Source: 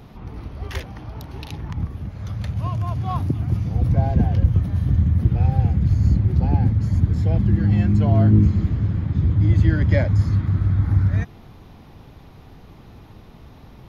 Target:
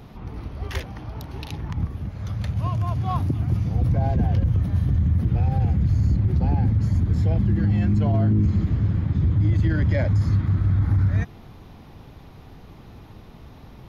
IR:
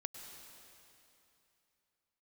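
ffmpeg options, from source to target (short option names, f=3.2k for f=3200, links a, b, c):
-af "alimiter=limit=-13dB:level=0:latency=1:release=25"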